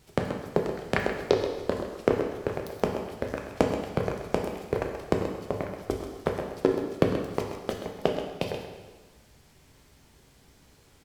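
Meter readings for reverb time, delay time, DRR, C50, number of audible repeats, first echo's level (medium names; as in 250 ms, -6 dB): 1.3 s, 130 ms, 1.5 dB, 4.0 dB, 1, -10.5 dB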